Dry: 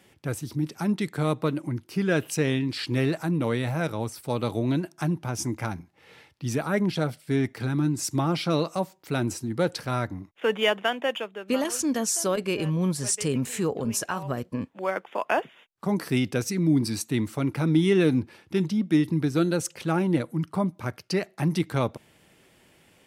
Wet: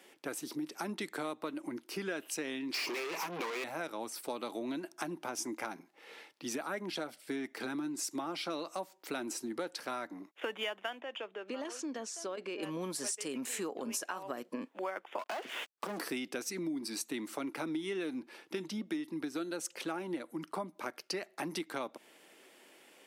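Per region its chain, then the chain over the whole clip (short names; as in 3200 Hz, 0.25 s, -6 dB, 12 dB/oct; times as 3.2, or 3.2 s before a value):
2.74–3.64 ripple EQ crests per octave 0.81, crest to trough 17 dB + compressor 3:1, threshold -30 dBFS + overdrive pedal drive 31 dB, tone 5100 Hz, clips at -20 dBFS
11–12.63 compressor 2:1, threshold -40 dBFS + air absorption 85 m
15.19–16.01 HPF 130 Hz 24 dB/oct + compressor 2:1, threshold -51 dBFS + sample leveller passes 5
whole clip: HPF 280 Hz 24 dB/oct; dynamic EQ 450 Hz, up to -6 dB, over -40 dBFS, Q 2.9; compressor 6:1, threshold -35 dBFS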